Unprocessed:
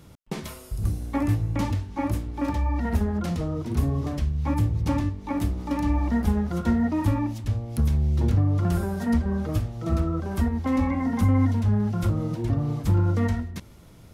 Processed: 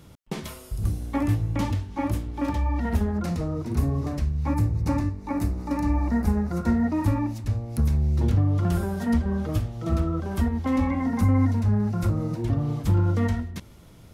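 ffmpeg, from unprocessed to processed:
-af "asetnsamples=n=441:p=0,asendcmd='3.11 equalizer g -8;4.53 equalizer g -15;6.69 equalizer g -7.5;8.22 equalizer g 2;11.1 equalizer g -8;12.43 equalizer g 2',equalizer=f=3200:t=o:w=0.29:g=2"

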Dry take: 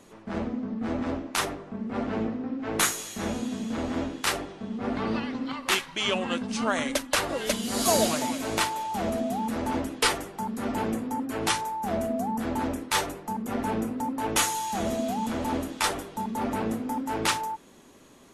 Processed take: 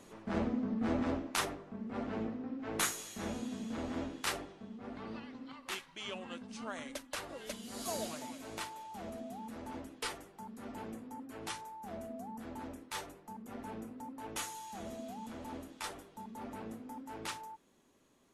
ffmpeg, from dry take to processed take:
-af "volume=0.708,afade=t=out:st=0.88:d=0.76:silence=0.501187,afade=t=out:st=4.31:d=0.52:silence=0.446684"

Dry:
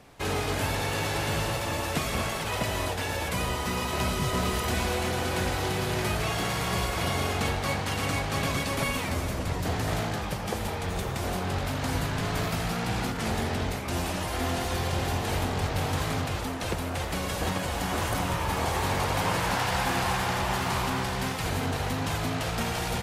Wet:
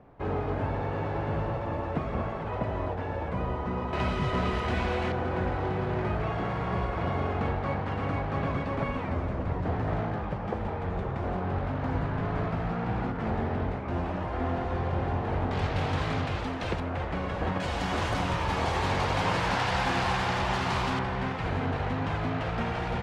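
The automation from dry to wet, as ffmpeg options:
-af "asetnsamples=n=441:p=0,asendcmd='3.93 lowpass f 2500;5.12 lowpass f 1400;15.51 lowpass f 3400;16.8 lowpass f 1900;17.6 lowpass f 4700;20.99 lowpass f 2200',lowpass=1100"

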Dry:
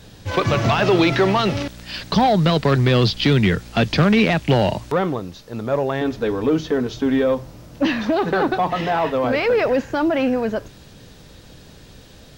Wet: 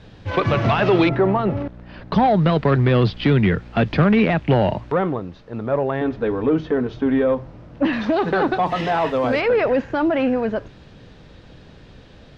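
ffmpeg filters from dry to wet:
-af "asetnsamples=n=441:p=0,asendcmd='1.09 lowpass f 1100;2.12 lowpass f 2200;7.93 lowpass f 4400;8.66 lowpass f 7900;9.41 lowpass f 3100',lowpass=3000"

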